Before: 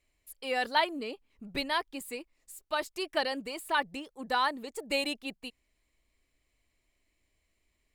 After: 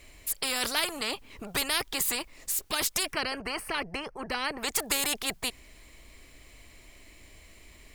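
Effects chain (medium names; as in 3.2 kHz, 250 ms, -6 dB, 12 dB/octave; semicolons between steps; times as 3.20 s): 3.13–4.63 s: boxcar filter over 12 samples; spectrum-flattening compressor 4:1; trim +1.5 dB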